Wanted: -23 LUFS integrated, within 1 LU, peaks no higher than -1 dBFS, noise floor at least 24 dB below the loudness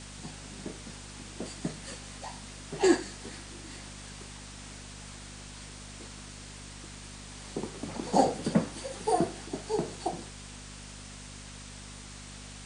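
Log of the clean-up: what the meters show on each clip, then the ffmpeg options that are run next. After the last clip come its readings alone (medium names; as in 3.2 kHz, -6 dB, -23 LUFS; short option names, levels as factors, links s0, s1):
hum 50 Hz; highest harmonic 250 Hz; hum level -45 dBFS; noise floor -46 dBFS; noise floor target -60 dBFS; loudness -35.5 LUFS; peak level -9.0 dBFS; loudness target -23.0 LUFS
-> -af "bandreject=f=50:t=h:w=4,bandreject=f=100:t=h:w=4,bandreject=f=150:t=h:w=4,bandreject=f=200:t=h:w=4,bandreject=f=250:t=h:w=4"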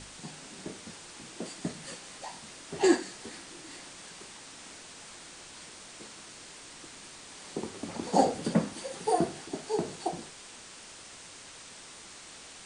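hum not found; noise floor -49 dBFS; noise floor target -59 dBFS
-> -af "afftdn=nr=10:nf=-49"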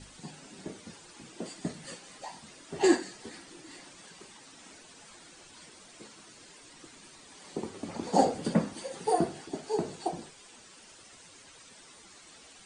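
noise floor -54 dBFS; noise floor target -57 dBFS
-> -af "afftdn=nr=6:nf=-54"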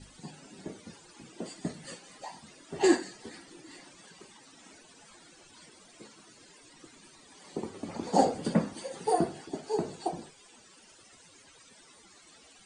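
noise floor -57 dBFS; loudness -32.0 LUFS; peak level -9.0 dBFS; loudness target -23.0 LUFS
-> -af "volume=2.82,alimiter=limit=0.891:level=0:latency=1"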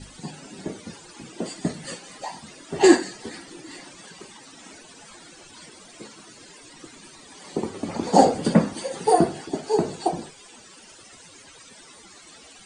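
loudness -23.0 LUFS; peak level -1.0 dBFS; noise floor -48 dBFS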